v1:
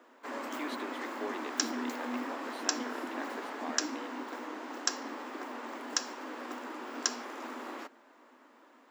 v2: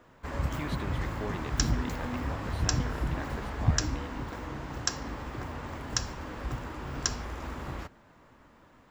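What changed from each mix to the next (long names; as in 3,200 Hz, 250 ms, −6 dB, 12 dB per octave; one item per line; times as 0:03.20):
master: remove Chebyshev high-pass filter 240 Hz, order 6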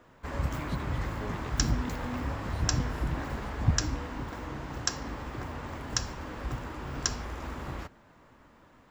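speech −4.5 dB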